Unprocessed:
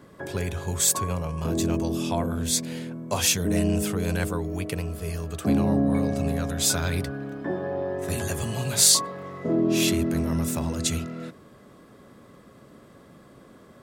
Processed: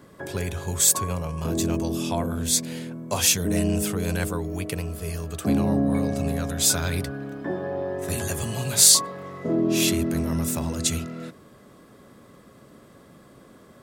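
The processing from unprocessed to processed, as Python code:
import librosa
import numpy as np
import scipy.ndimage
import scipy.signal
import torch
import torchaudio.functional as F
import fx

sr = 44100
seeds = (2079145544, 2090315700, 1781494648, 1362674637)

y = fx.high_shelf(x, sr, hz=5400.0, db=4.5)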